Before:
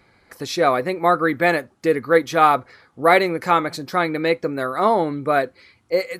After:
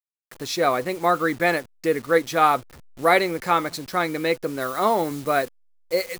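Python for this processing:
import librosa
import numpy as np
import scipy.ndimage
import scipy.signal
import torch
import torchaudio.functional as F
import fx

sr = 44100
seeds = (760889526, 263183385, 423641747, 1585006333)

y = fx.delta_hold(x, sr, step_db=-36.5)
y = fx.high_shelf(y, sr, hz=4200.0, db=fx.steps((0.0, 6.0), (4.6, 11.0)))
y = y * 10.0 ** (-3.5 / 20.0)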